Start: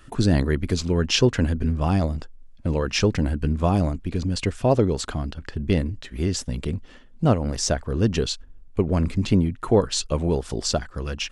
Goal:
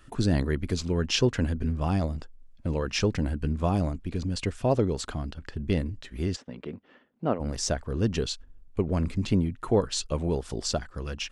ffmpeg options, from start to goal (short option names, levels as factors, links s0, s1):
-filter_complex "[0:a]asplit=3[s0][s1][s2];[s0]afade=t=out:st=6.35:d=0.02[s3];[s1]highpass=240,lowpass=2300,afade=t=in:st=6.35:d=0.02,afade=t=out:st=7.39:d=0.02[s4];[s2]afade=t=in:st=7.39:d=0.02[s5];[s3][s4][s5]amix=inputs=3:normalize=0,volume=0.562"